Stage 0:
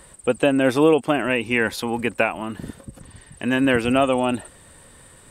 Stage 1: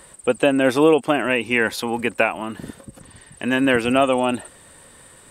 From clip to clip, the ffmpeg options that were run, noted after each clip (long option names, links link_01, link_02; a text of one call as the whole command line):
ffmpeg -i in.wav -af "lowshelf=frequency=140:gain=-8.5,volume=2dB" out.wav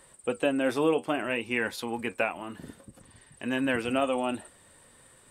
ffmpeg -i in.wav -af "flanger=delay=7.7:depth=4:regen=-62:speed=0.59:shape=sinusoidal,volume=-5.5dB" out.wav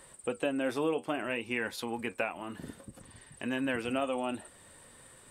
ffmpeg -i in.wav -af "acompressor=threshold=-41dB:ratio=1.5,volume=1.5dB" out.wav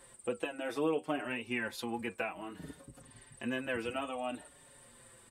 ffmpeg -i in.wav -filter_complex "[0:a]asplit=2[link_01][link_02];[link_02]adelay=5.3,afreqshift=-0.61[link_03];[link_01][link_03]amix=inputs=2:normalize=1" out.wav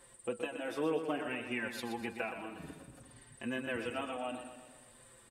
ffmpeg -i in.wav -af "aecho=1:1:122|244|366|488|610|732:0.376|0.203|0.11|0.0592|0.032|0.0173,volume=-2dB" out.wav